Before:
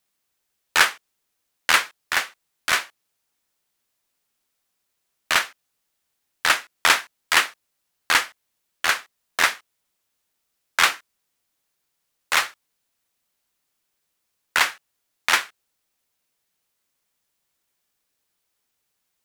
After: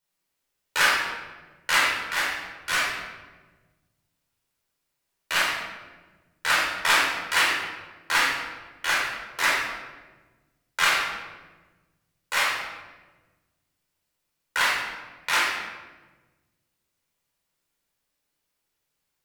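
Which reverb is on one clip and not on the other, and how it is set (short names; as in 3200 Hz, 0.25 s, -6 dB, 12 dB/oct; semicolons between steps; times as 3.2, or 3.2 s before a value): shoebox room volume 860 m³, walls mixed, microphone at 4.7 m; gain -11 dB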